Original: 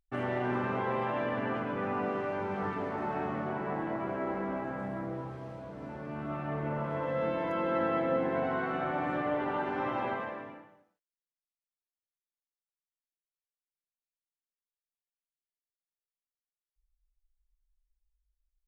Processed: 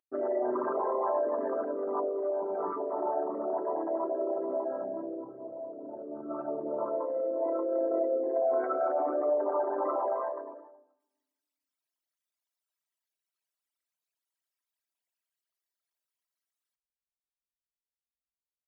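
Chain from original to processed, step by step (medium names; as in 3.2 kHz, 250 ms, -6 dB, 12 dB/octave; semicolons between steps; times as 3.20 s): resonances exaggerated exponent 3; high-pass 490 Hz 12 dB/octave; comb 3.1 ms, depth 50%; reverberation RT60 1.2 s, pre-delay 5 ms, DRR 19 dB; trim +4.5 dB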